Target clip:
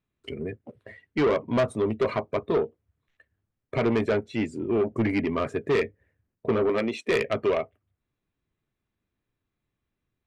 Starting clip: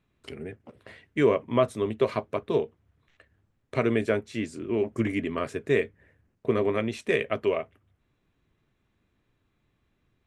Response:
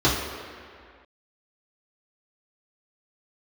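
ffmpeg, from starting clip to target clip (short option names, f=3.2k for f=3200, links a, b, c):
-filter_complex "[0:a]asettb=1/sr,asplit=3[a][b][c];[a]atrim=end=6.694[d];[b]atrim=start=6.69:end=7.1,asetpts=PTS-STARTPTS,afade=t=in:d=0.004:c=qsin,afade=t=out:st=0.406:d=0.004:c=qsin,highpass=220[e];[c]atrim=start=7.096[f];[d][e]acrossfade=d=0.004:c1=hsin:c2=qsin[g];[g][f]acrossfade=d=0.004:c1=qsin:c2=hsin,afftdn=nr=16:nf=-43,asoftclip=type=tanh:threshold=-23.5dB,volume=5.5dB"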